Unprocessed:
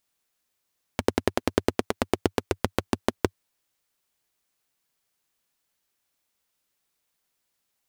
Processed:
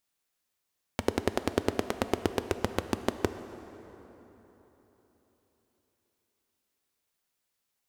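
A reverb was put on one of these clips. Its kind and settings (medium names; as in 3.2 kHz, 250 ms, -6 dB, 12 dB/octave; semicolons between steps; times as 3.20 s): plate-style reverb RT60 4 s, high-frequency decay 0.6×, DRR 10 dB; trim -4 dB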